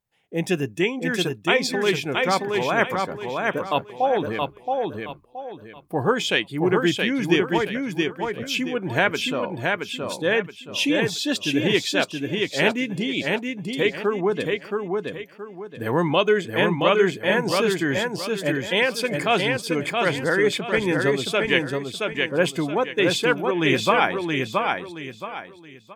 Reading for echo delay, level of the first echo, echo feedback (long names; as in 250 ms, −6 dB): 673 ms, −3.5 dB, 31%